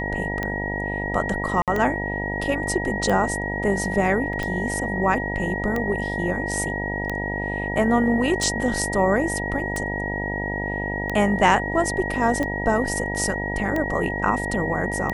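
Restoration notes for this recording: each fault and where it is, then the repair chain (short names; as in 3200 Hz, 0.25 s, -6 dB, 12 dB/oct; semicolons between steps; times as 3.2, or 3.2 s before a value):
buzz 50 Hz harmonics 19 -29 dBFS
tick 45 rpm -13 dBFS
tone 1900 Hz -28 dBFS
1.62–1.68 gap 57 ms
4.33 gap 2.5 ms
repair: de-click; de-hum 50 Hz, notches 19; notch 1900 Hz, Q 30; interpolate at 1.62, 57 ms; interpolate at 4.33, 2.5 ms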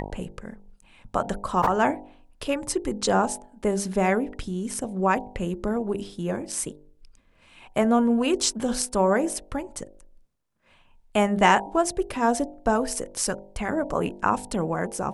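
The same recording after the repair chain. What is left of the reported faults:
none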